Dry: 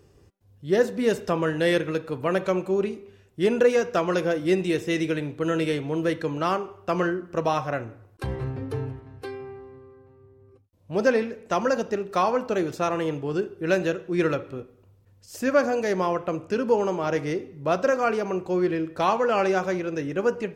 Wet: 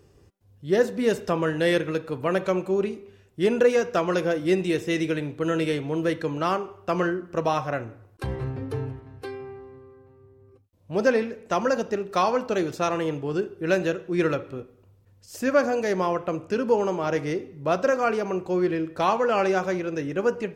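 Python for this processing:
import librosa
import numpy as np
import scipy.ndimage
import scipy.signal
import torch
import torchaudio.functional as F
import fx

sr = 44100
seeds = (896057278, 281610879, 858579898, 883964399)

y = fx.dynamic_eq(x, sr, hz=4400.0, q=1.0, threshold_db=-43.0, ratio=4.0, max_db=5, at=(12.07, 12.98))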